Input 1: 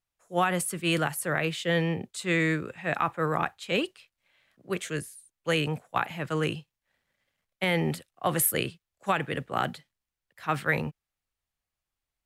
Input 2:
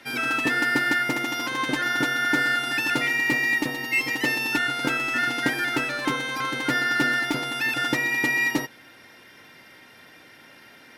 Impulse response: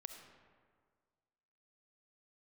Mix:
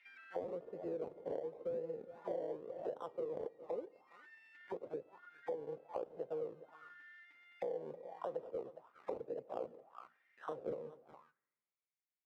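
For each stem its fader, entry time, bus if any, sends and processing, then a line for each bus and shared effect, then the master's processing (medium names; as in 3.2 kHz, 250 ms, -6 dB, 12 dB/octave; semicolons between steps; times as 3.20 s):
-1.5 dB, 0.00 s, send -14 dB, echo send -17.5 dB, resonant high shelf 2.7 kHz -11 dB, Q 3; decimation with a swept rate 27×, swing 60% 0.93 Hz
-9.0 dB, 0.00 s, no send, no echo send, self-modulated delay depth 0.1 ms; compression 2:1, threshold -40 dBFS, peak gain reduction 12 dB; auto duck -8 dB, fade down 0.60 s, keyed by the first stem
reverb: on, RT60 1.8 s, pre-delay 25 ms
echo: delay 411 ms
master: peaking EQ 1.7 kHz -3 dB 0.71 oct; auto-wah 490–2300 Hz, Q 5.6, down, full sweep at -29.5 dBFS; compression 6:1, threshold -38 dBFS, peak gain reduction 12 dB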